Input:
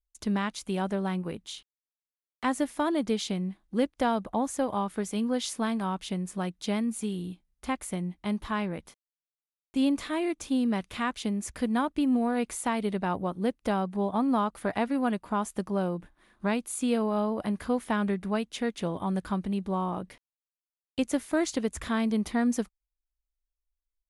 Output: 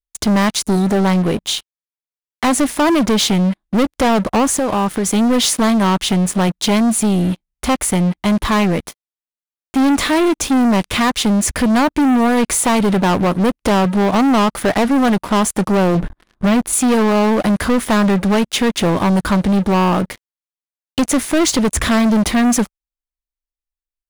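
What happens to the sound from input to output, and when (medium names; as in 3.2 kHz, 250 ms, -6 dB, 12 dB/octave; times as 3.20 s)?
0.62–0.90 s: spectral selection erased 460–3700 Hz
4.47–5.06 s: compression, threshold -32 dBFS
15.95–16.73 s: tilt EQ -2 dB/octave
whole clip: waveshaping leveller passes 5; trim +3.5 dB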